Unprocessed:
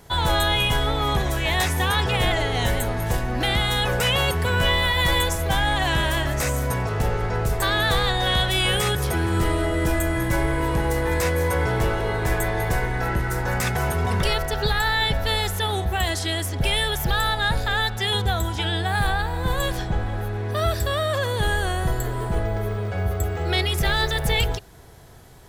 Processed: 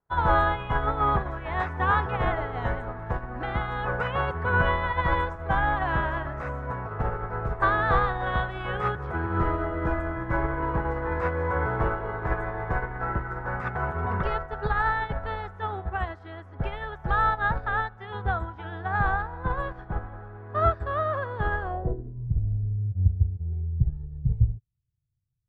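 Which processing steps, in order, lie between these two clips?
low-pass sweep 1.3 kHz -> 120 Hz, 21.61–22.26 s; upward expansion 2.5:1, over -40 dBFS; trim +2 dB

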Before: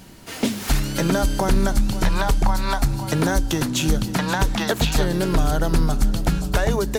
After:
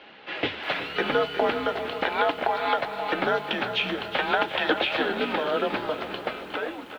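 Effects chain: fade out at the end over 1.04 s; treble shelf 2.2 kHz +4 dB; band-stop 1.3 kHz, Q 11; in parallel at -2 dB: gain riding within 4 dB 2 s; on the sum: flange 0.37 Hz, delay 1.7 ms, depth 9.7 ms, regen -62%; bit crusher 7-bit; feedback delay 385 ms, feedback 51%, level -12 dB; mistuned SSB -130 Hz 470–3400 Hz; bit-crushed delay 360 ms, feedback 55%, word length 8-bit, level -12.5 dB

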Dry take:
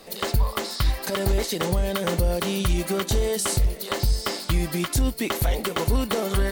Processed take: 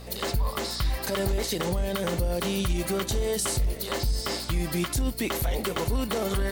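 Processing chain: peak limiter -18.5 dBFS, peak gain reduction 6 dB; hum 60 Hz, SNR 16 dB

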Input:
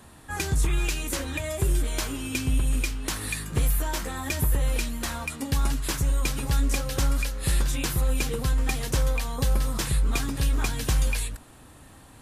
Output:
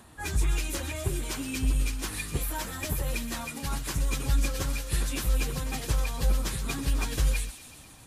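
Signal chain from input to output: feedback echo behind a high-pass 191 ms, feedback 73%, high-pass 2.7 kHz, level -10 dB; plain phase-vocoder stretch 0.66×

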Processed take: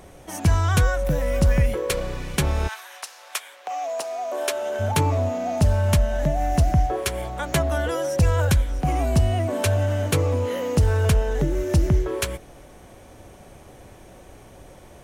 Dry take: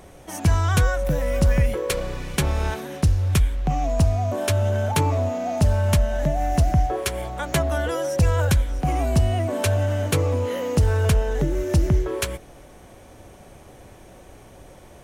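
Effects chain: 2.67–4.79 s: high-pass 1 kHz -> 310 Hz 24 dB/octave

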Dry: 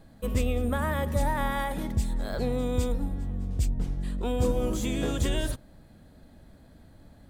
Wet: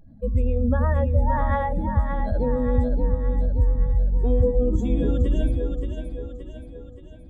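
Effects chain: spectral contrast enhancement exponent 2; two-band feedback delay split 300 Hz, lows 346 ms, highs 574 ms, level -6 dB; trim +5.5 dB

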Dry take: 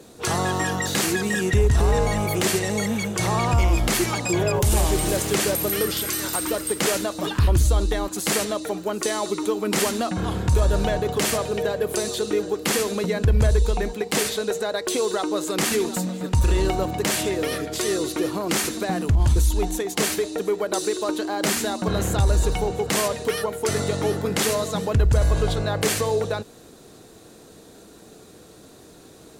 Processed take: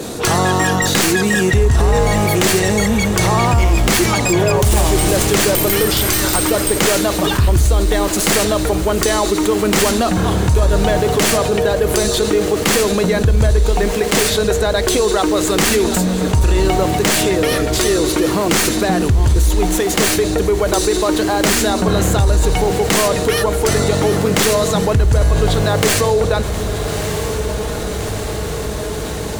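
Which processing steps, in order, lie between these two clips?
tracing distortion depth 0.044 ms; on a send: echo that smears into a reverb 1253 ms, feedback 61%, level -14 dB; on the sum: level flattener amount 50%; trim +4.5 dB

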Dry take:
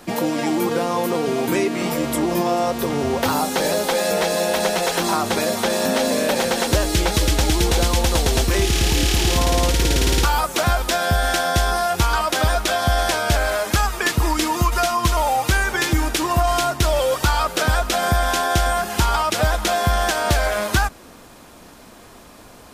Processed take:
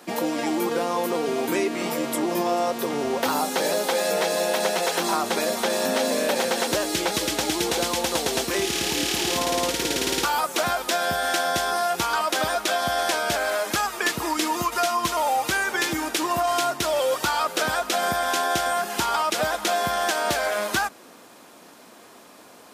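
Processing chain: high-pass 240 Hz 12 dB/octave; trim -3 dB

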